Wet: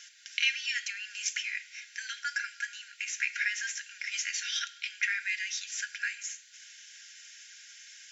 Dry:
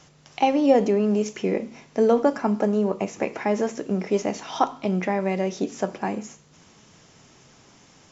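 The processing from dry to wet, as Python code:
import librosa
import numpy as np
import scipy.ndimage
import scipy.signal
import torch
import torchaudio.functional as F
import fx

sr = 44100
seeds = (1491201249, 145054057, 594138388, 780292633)

y = fx.brickwall_highpass(x, sr, low_hz=1400.0)
y = y + 0.43 * np.pad(y, (int(3.7 * sr / 1000.0), 0))[:len(y)]
y = y * 10.0 ** (5.5 / 20.0)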